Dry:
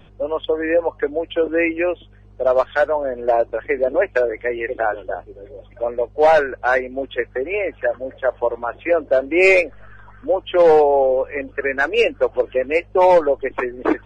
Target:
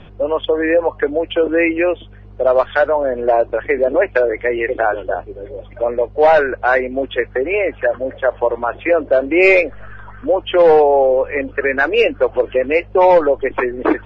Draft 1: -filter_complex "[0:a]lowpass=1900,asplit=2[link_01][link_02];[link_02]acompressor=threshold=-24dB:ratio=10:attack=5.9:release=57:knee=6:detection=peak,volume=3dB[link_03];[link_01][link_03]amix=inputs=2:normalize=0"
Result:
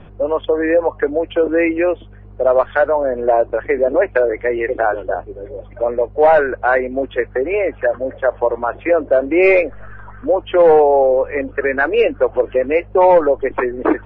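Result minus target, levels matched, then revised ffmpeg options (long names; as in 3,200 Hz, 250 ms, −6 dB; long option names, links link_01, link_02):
4,000 Hz band −7.0 dB
-filter_complex "[0:a]lowpass=4000,asplit=2[link_01][link_02];[link_02]acompressor=threshold=-24dB:ratio=10:attack=5.9:release=57:knee=6:detection=peak,volume=3dB[link_03];[link_01][link_03]amix=inputs=2:normalize=0"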